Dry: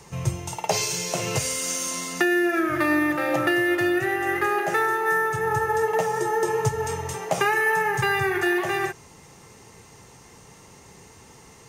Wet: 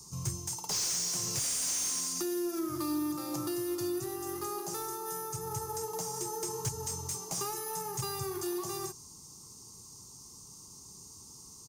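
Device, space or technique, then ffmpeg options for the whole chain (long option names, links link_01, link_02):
saturation between pre-emphasis and de-emphasis: -af "firequalizer=gain_entry='entry(320,0);entry(570,-15);entry(1100,0);entry(1700,-25);entry(4800,11)':delay=0.05:min_phase=1,highshelf=frequency=5400:gain=8,asoftclip=type=tanh:threshold=-17dB,highshelf=frequency=5400:gain=-8,volume=-7.5dB"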